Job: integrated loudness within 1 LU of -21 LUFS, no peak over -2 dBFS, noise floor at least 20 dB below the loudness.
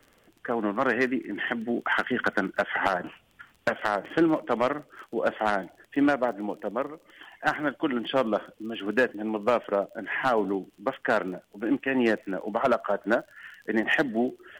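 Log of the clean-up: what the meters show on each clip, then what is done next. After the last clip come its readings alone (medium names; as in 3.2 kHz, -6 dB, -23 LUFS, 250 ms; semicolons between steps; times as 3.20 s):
tick rate 30 per s; loudness -27.5 LUFS; peak level -12.5 dBFS; loudness target -21.0 LUFS
-> de-click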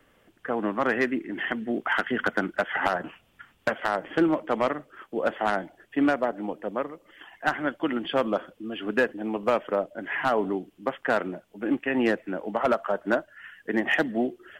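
tick rate 0.21 per s; loudness -27.5 LUFS; peak level -12.5 dBFS; loudness target -21.0 LUFS
-> trim +6.5 dB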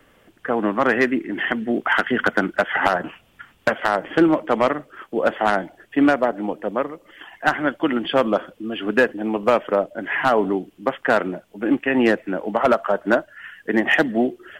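loudness -21.0 LUFS; peak level -6.0 dBFS; noise floor -58 dBFS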